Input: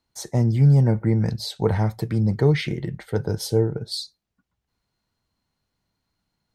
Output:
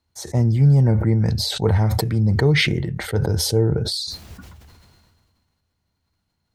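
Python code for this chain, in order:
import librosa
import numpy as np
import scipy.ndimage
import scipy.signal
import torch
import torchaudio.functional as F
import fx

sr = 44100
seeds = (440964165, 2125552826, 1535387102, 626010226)

y = fx.peak_eq(x, sr, hz=80.0, db=13.5, octaves=0.41)
y = fx.sustainer(y, sr, db_per_s=29.0)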